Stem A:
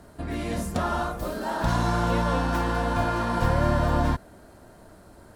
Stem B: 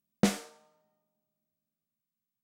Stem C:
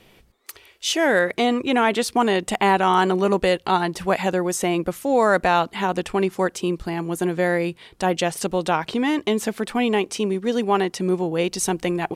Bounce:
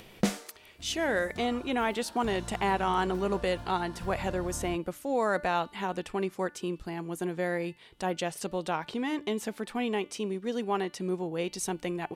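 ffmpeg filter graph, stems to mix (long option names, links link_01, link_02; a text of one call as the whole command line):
ffmpeg -i stem1.wav -i stem2.wav -i stem3.wav -filter_complex "[0:a]equalizer=frequency=710:width=0.37:gain=-8,adelay=600,volume=-15dB[link_01];[1:a]volume=-1.5dB[link_02];[2:a]bandreject=frequency=293.7:width_type=h:width=4,bandreject=frequency=587.4:width_type=h:width=4,bandreject=frequency=881.1:width_type=h:width=4,bandreject=frequency=1174.8:width_type=h:width=4,bandreject=frequency=1468.5:width_type=h:width=4,bandreject=frequency=1762.2:width_type=h:width=4,bandreject=frequency=2055.9:width_type=h:width=4,bandreject=frequency=2349.6:width_type=h:width=4,bandreject=frequency=2643.3:width_type=h:width=4,bandreject=frequency=2937:width_type=h:width=4,bandreject=frequency=3230.7:width_type=h:width=4,bandreject=frequency=3524.4:width_type=h:width=4,bandreject=frequency=3818.1:width_type=h:width=4,bandreject=frequency=4111.8:width_type=h:width=4,bandreject=frequency=4405.5:width_type=h:width=4,bandreject=frequency=4699.2:width_type=h:width=4,acompressor=mode=upward:threshold=-31dB:ratio=2.5,volume=-10dB[link_03];[link_01][link_02][link_03]amix=inputs=3:normalize=0" out.wav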